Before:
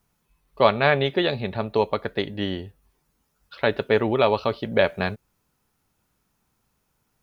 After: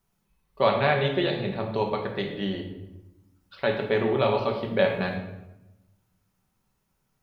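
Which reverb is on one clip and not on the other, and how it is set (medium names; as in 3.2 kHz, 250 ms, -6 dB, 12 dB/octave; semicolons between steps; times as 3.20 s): simulated room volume 350 m³, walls mixed, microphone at 1.1 m; trim -6 dB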